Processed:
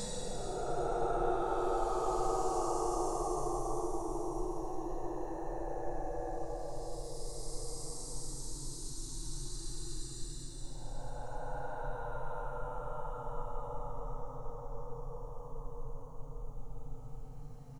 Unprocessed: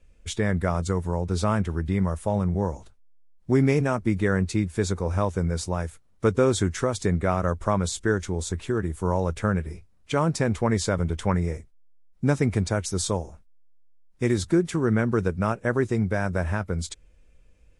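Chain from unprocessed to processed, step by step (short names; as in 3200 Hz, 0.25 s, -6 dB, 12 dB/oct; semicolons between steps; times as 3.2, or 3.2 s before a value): frequency-shifting echo 0.285 s, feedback 35%, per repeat +130 Hz, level -16 dB; Paulstretch 37×, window 0.05 s, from 13.65; gain +14.5 dB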